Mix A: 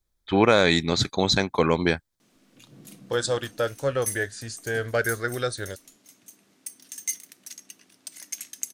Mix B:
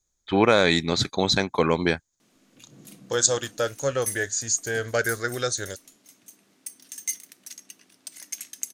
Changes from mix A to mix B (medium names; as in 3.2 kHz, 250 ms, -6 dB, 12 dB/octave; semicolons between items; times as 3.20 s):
second voice: add resonant low-pass 6.7 kHz, resonance Q 12; master: add bass shelf 74 Hz -6 dB